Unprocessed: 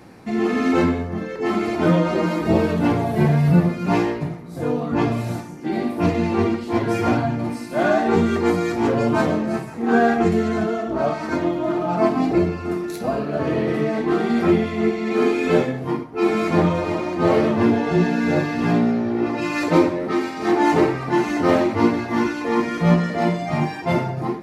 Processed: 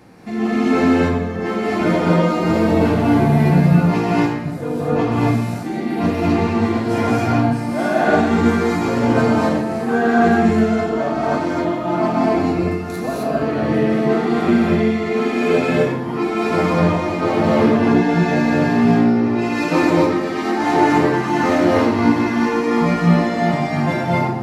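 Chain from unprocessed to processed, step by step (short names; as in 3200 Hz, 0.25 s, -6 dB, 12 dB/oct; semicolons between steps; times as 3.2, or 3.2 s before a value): non-linear reverb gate 0.29 s rising, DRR -4 dB; gain -2 dB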